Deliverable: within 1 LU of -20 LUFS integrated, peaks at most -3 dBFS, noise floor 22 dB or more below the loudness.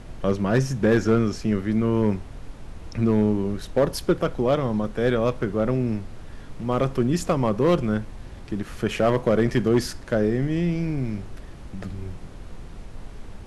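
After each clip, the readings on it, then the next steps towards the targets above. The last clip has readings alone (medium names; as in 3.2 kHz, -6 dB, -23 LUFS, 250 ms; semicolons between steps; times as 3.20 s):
clipped samples 0.6%; clipping level -12.0 dBFS; noise floor -40 dBFS; noise floor target -46 dBFS; loudness -23.5 LUFS; peak level -12.0 dBFS; loudness target -20.0 LUFS
-> clip repair -12 dBFS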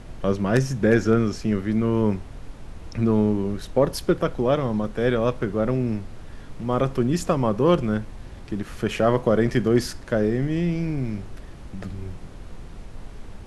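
clipped samples 0.0%; noise floor -40 dBFS; noise floor target -45 dBFS
-> noise print and reduce 6 dB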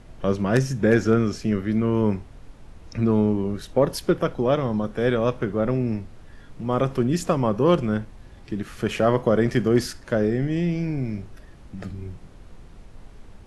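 noise floor -46 dBFS; loudness -23.0 LUFS; peak level -4.0 dBFS; loudness target -20.0 LUFS
-> trim +3 dB; peak limiter -3 dBFS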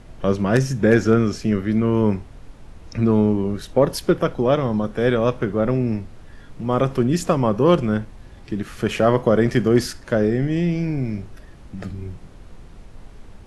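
loudness -20.0 LUFS; peak level -3.0 dBFS; noise floor -43 dBFS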